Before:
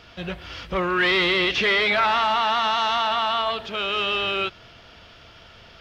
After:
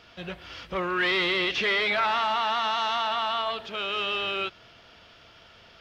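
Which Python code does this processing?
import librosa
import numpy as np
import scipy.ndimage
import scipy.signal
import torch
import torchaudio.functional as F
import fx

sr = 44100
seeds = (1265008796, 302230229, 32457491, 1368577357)

y = fx.low_shelf(x, sr, hz=120.0, db=-7.5)
y = F.gain(torch.from_numpy(y), -4.5).numpy()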